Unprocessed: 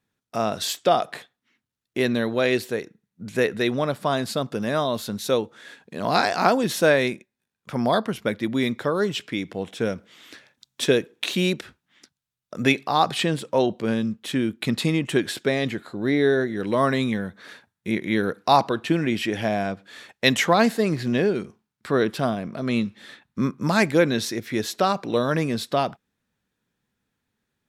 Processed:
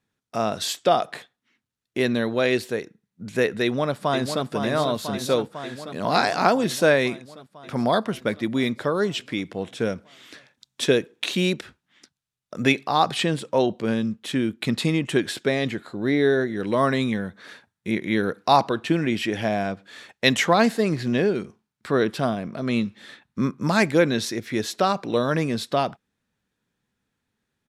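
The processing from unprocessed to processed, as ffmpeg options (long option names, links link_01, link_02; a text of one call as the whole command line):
ffmpeg -i in.wav -filter_complex "[0:a]asplit=2[link_01][link_02];[link_02]afade=type=in:start_time=3.63:duration=0.01,afade=type=out:start_time=4.46:duration=0.01,aecho=0:1:500|1000|1500|2000|2500|3000|3500|4000|4500|5000|5500|6000:0.446684|0.335013|0.25126|0.188445|0.141333|0.106|0.0795001|0.0596251|0.0447188|0.0335391|0.0251543|0.0188657[link_03];[link_01][link_03]amix=inputs=2:normalize=0,lowpass=12000" out.wav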